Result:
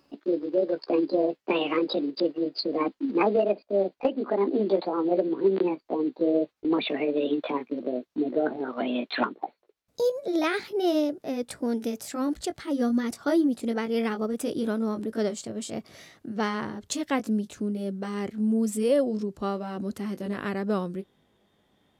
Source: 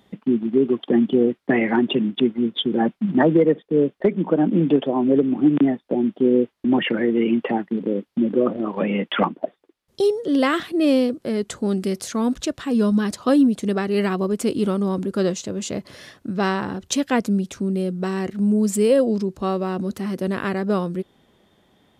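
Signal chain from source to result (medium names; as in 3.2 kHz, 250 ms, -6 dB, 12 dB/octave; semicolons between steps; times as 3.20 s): pitch bend over the whole clip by +6 st ending unshifted; trim -5.5 dB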